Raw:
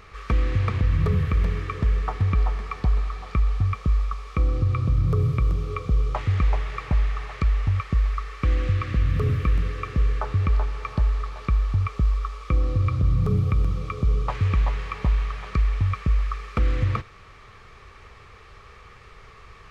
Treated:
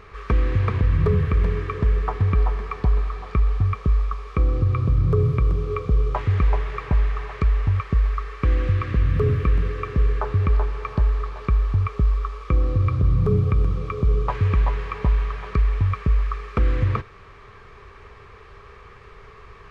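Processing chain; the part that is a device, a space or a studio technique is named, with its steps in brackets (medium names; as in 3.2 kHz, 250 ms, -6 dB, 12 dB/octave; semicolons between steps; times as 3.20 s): inside a helmet (treble shelf 3.8 kHz -9 dB; small resonant body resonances 410/1000/1600 Hz, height 7 dB); trim +2 dB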